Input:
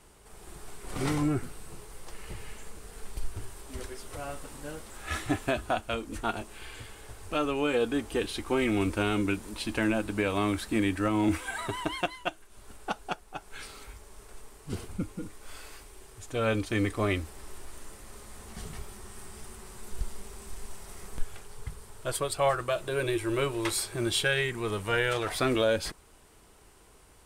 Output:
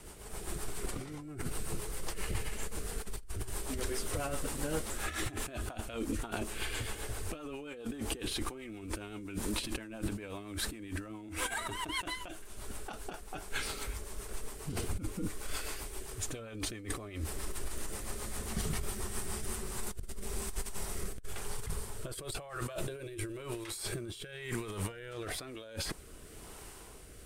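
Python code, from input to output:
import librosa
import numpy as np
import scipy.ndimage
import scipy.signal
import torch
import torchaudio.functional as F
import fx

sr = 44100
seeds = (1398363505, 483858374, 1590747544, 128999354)

y = fx.high_shelf(x, sr, hz=11000.0, db=6.5)
y = fx.over_compress(y, sr, threshold_db=-39.0, ratio=-1.0)
y = fx.rotary_switch(y, sr, hz=7.5, then_hz=1.0, switch_at_s=19.06)
y = y * 10.0 ** (2.5 / 20.0)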